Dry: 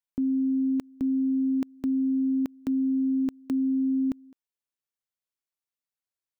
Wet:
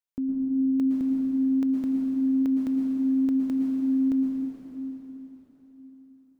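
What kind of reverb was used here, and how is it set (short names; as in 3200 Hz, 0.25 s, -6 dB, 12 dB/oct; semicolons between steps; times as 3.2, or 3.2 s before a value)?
plate-style reverb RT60 4.2 s, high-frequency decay 0.9×, pre-delay 0.1 s, DRR -2 dB; gain -2.5 dB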